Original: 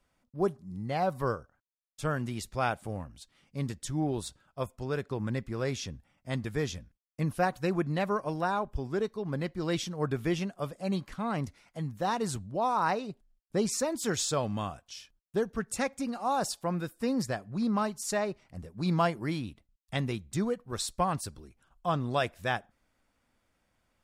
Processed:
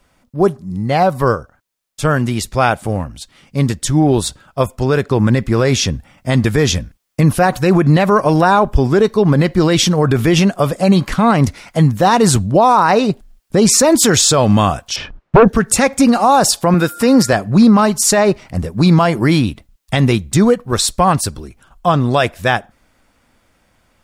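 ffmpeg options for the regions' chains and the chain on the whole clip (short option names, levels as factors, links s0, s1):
-filter_complex "[0:a]asettb=1/sr,asplit=3[s0][s1][s2];[s0]atrim=end=14.964[s3];[s1]atrim=start=14.96:end=15.48,asetpts=PTS-STARTPTS,afade=t=in:d=0.004:c=qsin,afade=t=out:st=0.516:d=0.004:c=qsin,lowpass=1400,acompressor=threshold=0.0224:ratio=6:attack=3.2:release=140:knee=1:detection=peak,aeval=exprs='0.0473*sin(PI/2*2.82*val(0)/0.0473)':c=same[s4];[s2]atrim=start=15.476[s5];[s3][s4]acrossfade=d=0.004:c1=hsin:c2=qsin[s6];[s6][s5]acrossfade=d=0.004:c1=qsin:c2=hsin,asettb=1/sr,asplit=3[s7][s8][s9];[s7]atrim=end=16.744[s10];[s8]atrim=start=16.74:end=17.33,asetpts=PTS-STARTPTS,afade=t=in:d=0.004:c=qsin,afade=t=out:st=0.586:d=0.004:c=qsin,highpass=f=210:p=1,acompressor=mode=upward:threshold=0.00891:ratio=2.5:attack=3.2:release=140:knee=2.83:detection=peak,aeval=exprs='val(0)+0.00158*sin(2*PI*1400*n/s)':c=same[s11];[s9]atrim=start=17.326[s12];[s10][s11]acrossfade=d=0.004:c1=hsin:c2=qsin[s13];[s13][s12]acrossfade=d=0.004:c1=qsin:c2=hsin,dynaudnorm=f=820:g=13:m=2.24,alimiter=level_in=8.41:limit=0.891:release=50:level=0:latency=1,volume=0.841"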